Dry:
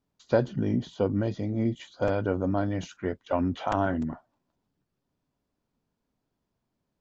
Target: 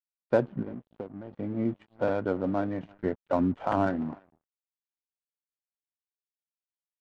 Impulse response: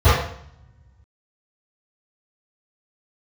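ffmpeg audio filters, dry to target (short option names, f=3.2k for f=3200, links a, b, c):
-filter_complex "[0:a]asettb=1/sr,asplit=3[a][b][c];[a]atrim=end=0.624[d];[b]atrim=start=0.62:end=1.33,asetpts=PTS-STARTPTS,afade=t=in:d=0.004:c=qsin,afade=t=out:st=0.706:d=0.004:c=qsin,acompressor=threshold=-33dB:ratio=12[e];[c]atrim=start=1.326[f];[d][e]acrossfade=d=0.004:c1=hsin:c2=qsin[g];[g][f]acrossfade=d=0.004:c1=qsin:c2=hsin,highpass=150,lowpass=2.8k,aecho=1:1:336:0.0794,aeval=exprs='sgn(val(0))*max(abs(val(0))-0.00398,0)':c=same,asettb=1/sr,asplit=3[h][i][j];[h]atrim=end=2.834[k];[i]atrim=start=2.83:end=3.9,asetpts=PTS-STARTPTS,afade=t=in:d=0.004:c=qsin,afade=t=out:st=1.066:d=0.004:c=qsin,lowshelf=f=230:g=7[l];[j]atrim=start=3.896[m];[k][l]acrossfade=d=0.004:c1=hsin:c2=qsin[n];[n][m]acrossfade=d=0.004:c1=qsin:c2=hsin,adynamicsmooth=sensitivity=3.5:basefreq=1.8k"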